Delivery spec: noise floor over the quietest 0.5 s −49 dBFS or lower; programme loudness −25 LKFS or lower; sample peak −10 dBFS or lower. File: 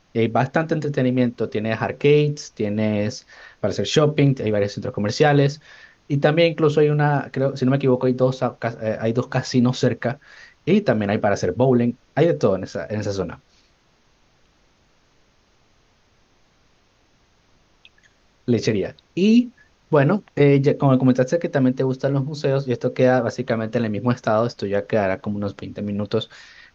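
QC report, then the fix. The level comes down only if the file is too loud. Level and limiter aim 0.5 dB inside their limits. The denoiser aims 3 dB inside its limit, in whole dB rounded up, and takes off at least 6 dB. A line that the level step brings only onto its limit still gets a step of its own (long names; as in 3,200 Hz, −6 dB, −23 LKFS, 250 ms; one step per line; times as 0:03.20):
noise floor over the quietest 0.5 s −60 dBFS: in spec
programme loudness −20.5 LKFS: out of spec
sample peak −4.5 dBFS: out of spec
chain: level −5 dB
brickwall limiter −10.5 dBFS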